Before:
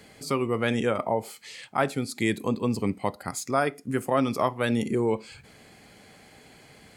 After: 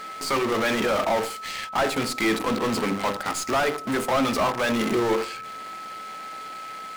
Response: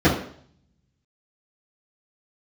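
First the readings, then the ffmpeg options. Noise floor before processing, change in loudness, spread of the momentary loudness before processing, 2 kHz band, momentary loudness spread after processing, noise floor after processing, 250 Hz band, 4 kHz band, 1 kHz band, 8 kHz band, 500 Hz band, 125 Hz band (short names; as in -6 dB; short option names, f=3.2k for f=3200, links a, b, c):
-53 dBFS, +3.0 dB, 7 LU, +6.0 dB, 13 LU, -37 dBFS, +1.0 dB, +8.5 dB, +5.0 dB, +5.5 dB, +2.5 dB, -4.0 dB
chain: -filter_complex "[0:a]bandreject=f=50:t=h:w=6,bandreject=f=100:t=h:w=6,bandreject=f=150:t=h:w=6,bandreject=f=200:t=h:w=6,bandreject=f=250:t=h:w=6,bandreject=f=300:t=h:w=6,bandreject=f=350:t=h:w=6,bandreject=f=400:t=h:w=6,bandreject=f=450:t=h:w=6,bandreject=f=500:t=h:w=6,acrusher=bits=7:dc=4:mix=0:aa=0.000001,asplit=2[a][b];[b]highpass=f=720:p=1,volume=28dB,asoftclip=type=tanh:threshold=-9.5dB[c];[a][c]amix=inputs=2:normalize=0,lowpass=f=3.7k:p=1,volume=-6dB,aeval=exprs='val(0)+0.0316*sin(2*PI*1300*n/s)':c=same,asplit=2[d][e];[1:a]atrim=start_sample=2205[f];[e][f]afir=irnorm=-1:irlink=0,volume=-37dB[g];[d][g]amix=inputs=2:normalize=0,volume=-5.5dB"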